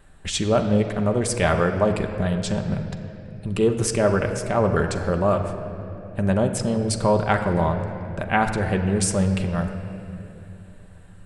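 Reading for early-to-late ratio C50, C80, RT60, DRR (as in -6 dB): 7.5 dB, 8.5 dB, 2.9 s, 4.0 dB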